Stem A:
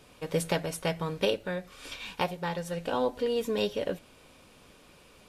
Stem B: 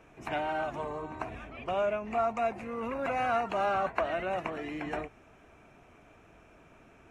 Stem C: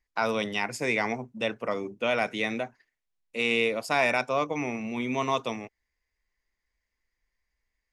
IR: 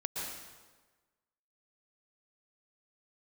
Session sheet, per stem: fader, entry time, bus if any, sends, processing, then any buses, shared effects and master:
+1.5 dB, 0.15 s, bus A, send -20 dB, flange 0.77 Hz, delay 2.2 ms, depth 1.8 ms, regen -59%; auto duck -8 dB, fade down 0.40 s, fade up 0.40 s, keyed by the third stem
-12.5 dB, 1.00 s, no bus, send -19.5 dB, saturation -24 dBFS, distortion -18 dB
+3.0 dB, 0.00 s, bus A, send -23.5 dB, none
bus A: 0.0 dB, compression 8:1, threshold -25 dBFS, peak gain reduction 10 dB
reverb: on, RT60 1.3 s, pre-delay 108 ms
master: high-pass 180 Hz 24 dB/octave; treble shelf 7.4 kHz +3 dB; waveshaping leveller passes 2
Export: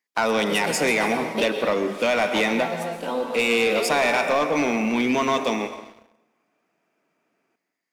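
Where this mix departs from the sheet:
stem B: entry 1.00 s -> 0.45 s; reverb return +10.0 dB

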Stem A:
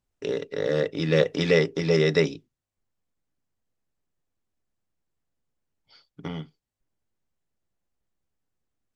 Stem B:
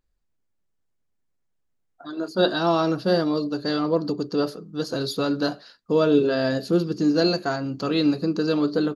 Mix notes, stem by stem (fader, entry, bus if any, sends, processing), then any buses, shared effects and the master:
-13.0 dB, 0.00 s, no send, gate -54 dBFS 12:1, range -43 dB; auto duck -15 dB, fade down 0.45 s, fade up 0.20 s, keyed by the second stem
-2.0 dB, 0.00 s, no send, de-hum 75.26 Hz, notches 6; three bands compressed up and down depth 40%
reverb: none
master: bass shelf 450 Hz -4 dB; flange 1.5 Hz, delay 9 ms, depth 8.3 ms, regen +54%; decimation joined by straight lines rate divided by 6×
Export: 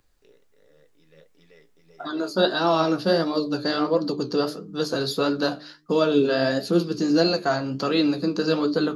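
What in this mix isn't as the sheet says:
stem B -2.0 dB -> +6.5 dB; master: missing decimation joined by straight lines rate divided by 6×

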